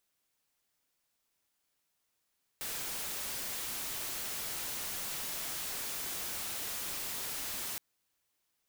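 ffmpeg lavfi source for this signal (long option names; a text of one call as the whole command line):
ffmpeg -f lavfi -i "anoisesrc=color=white:amplitude=0.0206:duration=5.17:sample_rate=44100:seed=1" out.wav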